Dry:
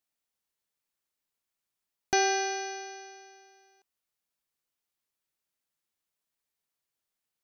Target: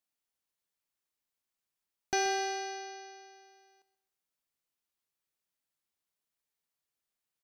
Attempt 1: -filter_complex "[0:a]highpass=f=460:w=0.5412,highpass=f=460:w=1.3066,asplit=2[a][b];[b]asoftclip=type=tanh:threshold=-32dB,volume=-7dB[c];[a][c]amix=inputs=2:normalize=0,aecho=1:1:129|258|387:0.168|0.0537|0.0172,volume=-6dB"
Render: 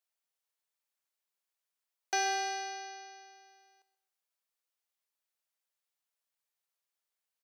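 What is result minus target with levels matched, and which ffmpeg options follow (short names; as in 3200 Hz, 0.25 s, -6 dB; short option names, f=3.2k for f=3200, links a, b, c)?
500 Hz band -6.0 dB
-filter_complex "[0:a]asplit=2[a][b];[b]asoftclip=type=tanh:threshold=-32dB,volume=-7dB[c];[a][c]amix=inputs=2:normalize=0,aecho=1:1:129|258|387:0.168|0.0537|0.0172,volume=-6dB"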